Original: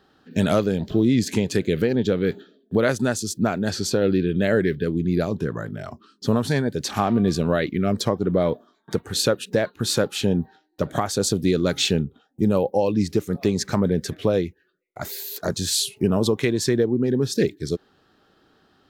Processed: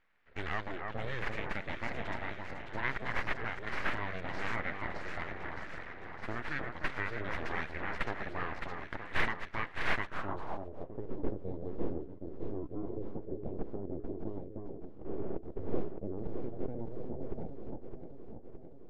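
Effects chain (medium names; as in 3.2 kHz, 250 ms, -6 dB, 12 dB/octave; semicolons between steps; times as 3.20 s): pre-emphasis filter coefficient 0.9; on a send: echo whose repeats swap between lows and highs 307 ms, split 1.5 kHz, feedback 78%, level -4 dB; on the sum: full-wave rectifier; low-pass sweep 1.9 kHz -> 400 Hz, 10.01–11.01 s; trim +1 dB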